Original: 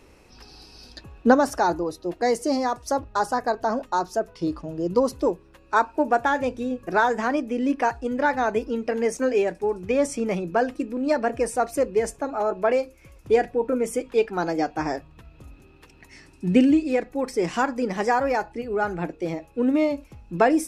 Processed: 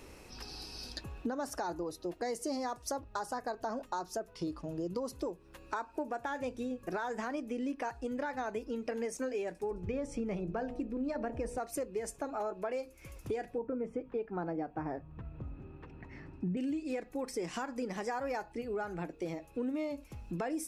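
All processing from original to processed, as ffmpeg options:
ffmpeg -i in.wav -filter_complex "[0:a]asettb=1/sr,asplit=3[link_01][link_02][link_03];[link_01]atrim=end=9.714[link_04];[link_02]atrim=start=9.71:end=11.58,asetpts=PTS-STARTPTS,afade=type=in:duration=0.004:curve=qsin,afade=type=out:start_time=1.866:duration=0.004:curve=qsin,aemphasis=mode=reproduction:type=bsi,bandreject=frequency=60.88:width_type=h:width=4,bandreject=frequency=121.76:width_type=h:width=4,bandreject=frequency=182.64:width_type=h:width=4,bandreject=frequency=243.52:width_type=h:width=4,bandreject=frequency=304.4:width_type=h:width=4,bandreject=frequency=365.28:width_type=h:width=4,bandreject=frequency=426.16:width_type=h:width=4,bandreject=frequency=487.04:width_type=h:width=4,bandreject=frequency=547.92:width_type=h:width=4,bandreject=frequency=608.8:width_type=h:width=4,bandreject=frequency=669.68:width_type=h:width=4,bandreject=frequency=730.56:width_type=h:width=4,bandreject=frequency=791.44:width_type=h:width=4,bandreject=frequency=852.32:width_type=h:width=4,bandreject=frequency=913.2:width_type=h:width=4,bandreject=frequency=974.08:width_type=h:width=4,bandreject=frequency=1034.96:width_type=h:width=4[link_05];[link_03]atrim=start=11.576[link_06];[link_04][link_05]acrossfade=duration=0.004:curve1=hsin:curve2=qsin[link_07];[link_07][link_06]acrossfade=duration=0.004:curve1=qsin:curve2=hsin,asettb=1/sr,asplit=3[link_08][link_09][link_10];[link_08]atrim=end=13.584[link_11];[link_09]atrim=start=13.58:end=16.57,asetpts=PTS-STARTPTS,afade=type=in:duration=0.004:curve=qsin,afade=type=out:start_time=2.986:duration=0.004:curve=qsin,lowpass=1500,equalizer=frequency=130:width_type=o:width=1.8:gain=6.5[link_12];[link_10]atrim=start=16.566[link_13];[link_11][link_12]acrossfade=duration=0.004:curve1=hsin:curve2=qsin[link_14];[link_14][link_13]acrossfade=duration=0.004:curve1=qsin:curve2=hsin,highshelf=frequency=6300:gain=6,alimiter=limit=-14.5dB:level=0:latency=1:release=170,acompressor=threshold=-38dB:ratio=3" out.wav

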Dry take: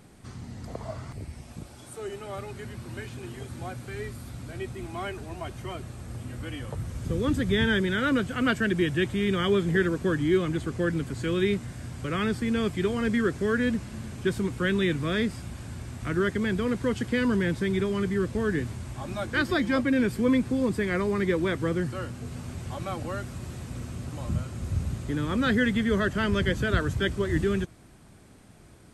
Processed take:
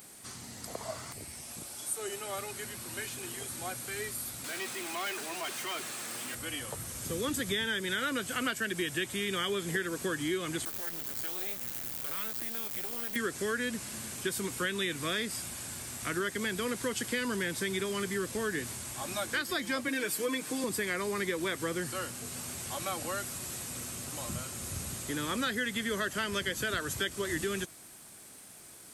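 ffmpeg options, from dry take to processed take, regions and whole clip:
ffmpeg -i in.wav -filter_complex "[0:a]asettb=1/sr,asplit=3[link_01][link_02][link_03];[link_01]atrim=end=4.444[link_04];[link_02]atrim=start=4.44:end=6.35,asetpts=PTS-STARTPTS,afade=type=in:duration=0.004:curve=qsin,afade=type=out:start_time=1.906:duration=0.004:curve=qsin,highpass=200,equalizer=frequency=650:width=0.5:gain=-9,asplit=2[link_05][link_06];[link_06]highpass=frequency=720:poles=1,volume=25dB,asoftclip=type=tanh:threshold=-27dB[link_07];[link_05][link_07]amix=inputs=2:normalize=0,lowpass=frequency=1500:poles=1,volume=-6dB[link_08];[link_03]atrim=start=6.346[link_09];[link_04][link_08]acrossfade=duration=0.004:curve1=hsin:curve2=qsin[link_10];[link_10][link_09]acrossfade=duration=0.004:curve1=qsin:curve2=hsin,asettb=1/sr,asplit=3[link_11][link_12][link_13];[link_11]atrim=end=10.654[link_14];[link_12]atrim=start=10.65:end=13.16,asetpts=PTS-STARTPTS,afade=type=in:duration=0.004:curve=qsin,afade=type=out:start_time=2.506:duration=0.004:curve=qsin,aemphasis=mode=reproduction:type=50fm,acompressor=threshold=-31dB:ratio=12:attack=3.2:release=140:knee=1:detection=peak,acrusher=bits=5:dc=4:mix=0:aa=0.000001[link_15];[link_13]atrim=start=13.156[link_16];[link_14][link_15]acrossfade=duration=0.004:curve1=hsin:curve2=qsin[link_17];[link_17][link_16]acrossfade=duration=0.004:curve1=qsin:curve2=hsin,asettb=1/sr,asplit=3[link_18][link_19][link_20];[link_18]atrim=end=19.884[link_21];[link_19]atrim=start=19.88:end=20.64,asetpts=PTS-STARTPTS,afade=type=in:duration=0.004:curve=qsin,afade=type=out:start_time=0.756:duration=0.004:curve=qsin,highpass=230,aecho=1:1:6.5:0.78,atrim=end_sample=33516[link_22];[link_20]atrim=start=20.636[link_23];[link_21][link_22]acrossfade=duration=0.004:curve1=hsin:curve2=qsin[link_24];[link_24][link_23]acrossfade=duration=0.004:curve1=qsin:curve2=hsin,aemphasis=mode=production:type=riaa,acompressor=threshold=-29dB:ratio=6" out.wav

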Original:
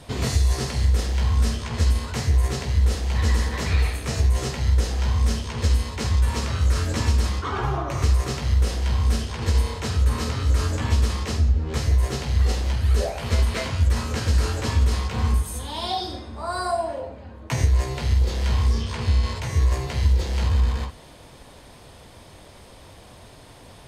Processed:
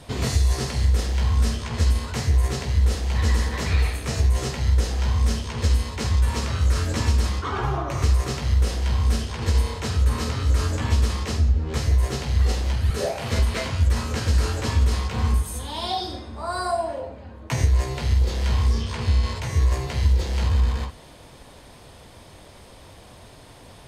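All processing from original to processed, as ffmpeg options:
ffmpeg -i in.wav -filter_complex "[0:a]asettb=1/sr,asplit=3[link_01][link_02][link_03];[link_01]atrim=end=12.904[link_04];[link_02]atrim=start=12.9:end=13.39,asetpts=PTS-STARTPTS,afade=type=in:duration=0.004:curve=qsin,afade=type=out:start_time=0.486:duration=0.004:curve=qsin,highpass=frequency=87:width=0.5412,highpass=frequency=87:width=1.3066,asplit=2[link_05][link_06];[link_06]adelay=41,volume=-4dB[link_07];[link_05][link_07]amix=inputs=2:normalize=0,atrim=end_sample=21609[link_08];[link_03]atrim=start=13.386[link_09];[link_04][link_08]acrossfade=duration=0.004:curve1=hsin:curve2=qsin[link_10];[link_10][link_09]acrossfade=duration=0.004:curve1=qsin:curve2=hsin" out.wav

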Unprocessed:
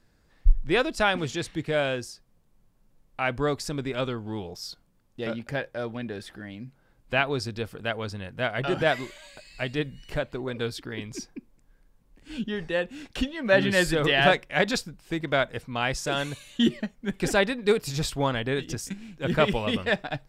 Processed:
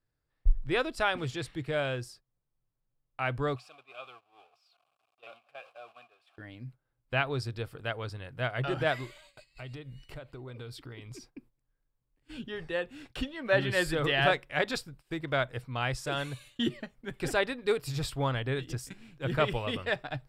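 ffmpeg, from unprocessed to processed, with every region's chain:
ffmpeg -i in.wav -filter_complex "[0:a]asettb=1/sr,asplit=3[link_01][link_02][link_03];[link_01]atrim=end=3.564[link_04];[link_02]atrim=start=3.56:end=6.38,asetpts=PTS-STARTPTS,afade=type=in:duration=0.004:curve=qsin,afade=type=out:start_time=2.816:duration=0.004:curve=qsin,aeval=exprs='val(0)+0.5*0.0251*sgn(val(0))':channel_layout=same,asplit=3[link_05][link_06][link_07];[link_05]bandpass=frequency=730:width_type=q:width=8,volume=0dB[link_08];[link_06]bandpass=frequency=1090:width_type=q:width=8,volume=-6dB[link_09];[link_07]bandpass=frequency=2440:width_type=q:width=8,volume=-9dB[link_10];[link_08][link_09][link_10]amix=inputs=3:normalize=0,tiltshelf=frequency=1100:gain=-8.5[link_11];[link_03]atrim=start=6.376[link_12];[link_04][link_11]acrossfade=duration=0.004:curve1=hsin:curve2=qsin[link_13];[link_13][link_12]acrossfade=duration=0.004:curve1=qsin:curve2=hsin,asettb=1/sr,asplit=3[link_14][link_15][link_16];[link_14]atrim=end=9.064[link_17];[link_15]atrim=start=9.06:end=11.35,asetpts=PTS-STARTPTS,afade=type=in:duration=0.004:curve=qsin,afade=type=out:start_time=2.286:duration=0.004:curve=qsin,acompressor=threshold=-36dB:ratio=4:attack=3.2:release=140:knee=1:detection=peak,bandreject=frequency=1700:width=9.9[link_18];[link_16]atrim=start=11.346[link_19];[link_17][link_18]acrossfade=duration=0.004:curve1=hsin:curve2=qsin[link_20];[link_20][link_19]acrossfade=duration=0.004:curve1=qsin:curve2=hsin,agate=range=-14dB:threshold=-47dB:ratio=16:detection=peak,equalizer=frequency=125:width_type=o:width=0.33:gain=9,equalizer=frequency=200:width_type=o:width=0.33:gain=-11,equalizer=frequency=1250:width_type=o:width=0.33:gain=3,equalizer=frequency=6300:width_type=o:width=0.33:gain=-7,volume=-5.5dB" out.wav

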